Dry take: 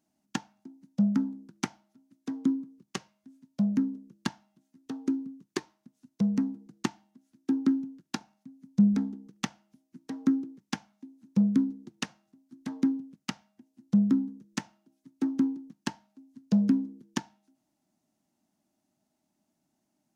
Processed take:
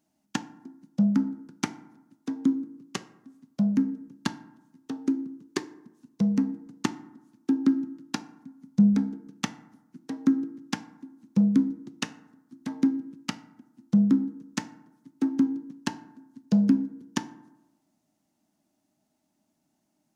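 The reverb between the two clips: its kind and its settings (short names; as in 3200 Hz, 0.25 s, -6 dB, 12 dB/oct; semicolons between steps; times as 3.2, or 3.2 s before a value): FDN reverb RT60 0.95 s, low-frequency decay 1.05×, high-frequency decay 0.4×, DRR 12.5 dB; gain +2.5 dB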